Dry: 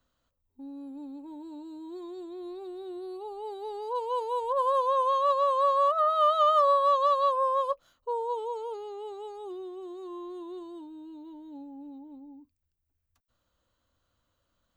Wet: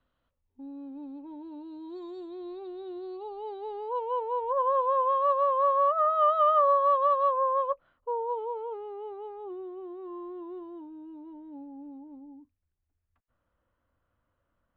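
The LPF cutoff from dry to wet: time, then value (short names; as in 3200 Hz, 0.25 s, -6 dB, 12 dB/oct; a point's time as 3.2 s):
LPF 24 dB/oct
1.59 s 3300 Hz
2.1 s 6200 Hz
2.47 s 4100 Hz
3.27 s 4100 Hz
4.24 s 2300 Hz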